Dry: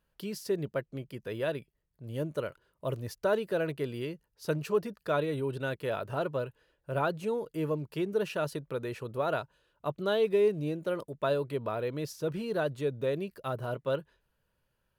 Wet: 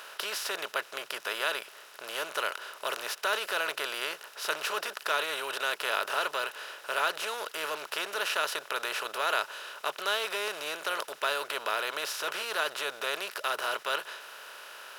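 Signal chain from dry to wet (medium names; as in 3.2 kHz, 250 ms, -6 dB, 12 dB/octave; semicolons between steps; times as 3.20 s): spectral levelling over time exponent 0.4; high-pass 1.4 kHz 12 dB/octave; trim +5 dB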